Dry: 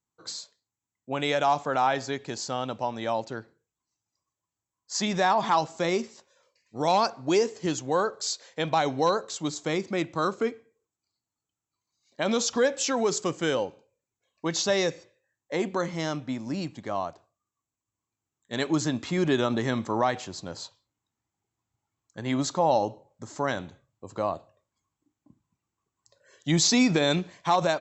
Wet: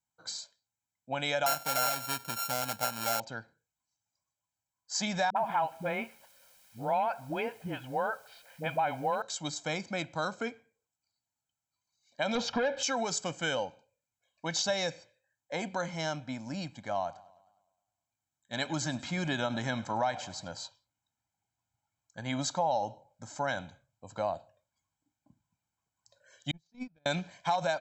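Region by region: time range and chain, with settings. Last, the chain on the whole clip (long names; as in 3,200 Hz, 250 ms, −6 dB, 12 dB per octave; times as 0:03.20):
0:01.46–0:03.20: samples sorted by size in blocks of 32 samples + high-shelf EQ 5,800 Hz +8.5 dB
0:05.30–0:09.22: Chebyshev low-pass filter 2,800 Hz, order 4 + bit-depth reduction 10 bits, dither triangular + all-pass dispersion highs, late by 61 ms, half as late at 410 Hz
0:12.35–0:12.83: leveller curve on the samples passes 2 + high-frequency loss of the air 240 metres
0:16.95–0:20.48: notch filter 460 Hz, Q 11 + feedback echo with a swinging delay time 103 ms, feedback 55%, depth 120 cents, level −20 dB
0:26.51–0:27.06: noise gate −17 dBFS, range −47 dB + RIAA equalisation playback
whole clip: low-shelf EQ 270 Hz −5.5 dB; comb filter 1.3 ms, depth 73%; downward compressor 3 to 1, threshold −23 dBFS; level −3.5 dB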